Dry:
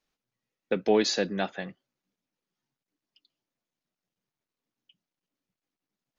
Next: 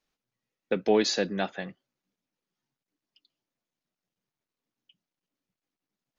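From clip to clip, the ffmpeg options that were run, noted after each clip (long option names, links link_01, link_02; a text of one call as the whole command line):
ffmpeg -i in.wav -af anull out.wav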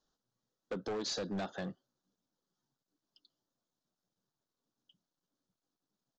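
ffmpeg -i in.wav -af "acompressor=threshold=-30dB:ratio=12,asuperstop=centerf=2300:order=4:qfactor=1.3,aresample=16000,asoftclip=type=hard:threshold=-34.5dB,aresample=44100,volume=1dB" out.wav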